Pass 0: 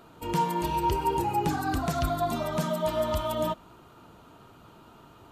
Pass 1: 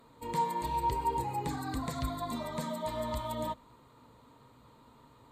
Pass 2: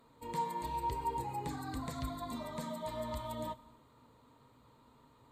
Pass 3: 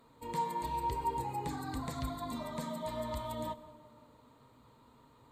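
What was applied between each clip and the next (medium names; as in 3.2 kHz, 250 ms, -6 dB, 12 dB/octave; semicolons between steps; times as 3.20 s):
rippled EQ curve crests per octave 1, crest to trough 10 dB; trim -7.5 dB
reverberation RT60 1.2 s, pre-delay 6 ms, DRR 15.5 dB; trim -5 dB
tape echo 169 ms, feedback 71%, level -14 dB, low-pass 1.3 kHz; trim +1.5 dB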